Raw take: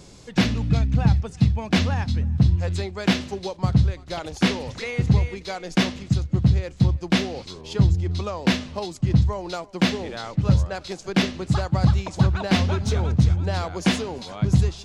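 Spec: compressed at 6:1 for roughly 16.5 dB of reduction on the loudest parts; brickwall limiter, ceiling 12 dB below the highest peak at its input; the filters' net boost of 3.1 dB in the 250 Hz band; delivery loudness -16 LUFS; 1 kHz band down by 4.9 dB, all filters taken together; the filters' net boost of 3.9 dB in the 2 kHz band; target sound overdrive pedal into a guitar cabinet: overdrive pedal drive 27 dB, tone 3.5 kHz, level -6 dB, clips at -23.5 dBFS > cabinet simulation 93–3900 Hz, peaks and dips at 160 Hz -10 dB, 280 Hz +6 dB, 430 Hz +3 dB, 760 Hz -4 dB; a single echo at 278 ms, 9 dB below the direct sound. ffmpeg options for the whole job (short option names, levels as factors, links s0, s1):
-filter_complex "[0:a]equalizer=f=250:t=o:g=5.5,equalizer=f=1000:t=o:g=-6.5,equalizer=f=2000:t=o:g=6.5,acompressor=threshold=0.0355:ratio=6,alimiter=level_in=1.26:limit=0.0631:level=0:latency=1,volume=0.794,aecho=1:1:278:0.355,asplit=2[s0][s1];[s1]highpass=f=720:p=1,volume=22.4,asoftclip=type=tanh:threshold=0.0668[s2];[s0][s2]amix=inputs=2:normalize=0,lowpass=f=3500:p=1,volume=0.501,highpass=93,equalizer=f=160:t=q:w=4:g=-10,equalizer=f=280:t=q:w=4:g=6,equalizer=f=430:t=q:w=4:g=3,equalizer=f=760:t=q:w=4:g=-4,lowpass=f=3900:w=0.5412,lowpass=f=3900:w=1.3066,volume=5.62"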